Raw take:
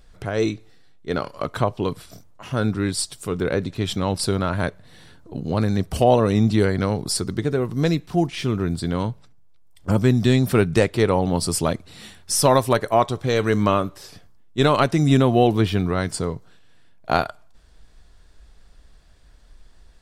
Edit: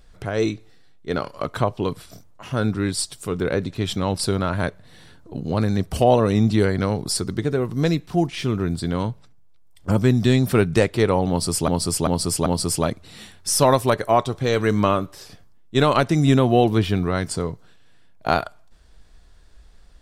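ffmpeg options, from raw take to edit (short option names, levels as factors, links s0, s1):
-filter_complex "[0:a]asplit=4[s0][s1][s2][s3];[s0]atrim=end=11.682[s4];[s1]atrim=start=11.288:end=11.682[s5];[s2]atrim=start=11.288:end=11.682[s6];[s3]atrim=start=11.288[s7];[s4][s5]acrossfade=d=0.004:c1=hsin:c2=hsin[s8];[s8][s6]acrossfade=d=0.004:c1=hsin:c2=hsin[s9];[s9][s7]acrossfade=d=0.004:c1=hsin:c2=hsin"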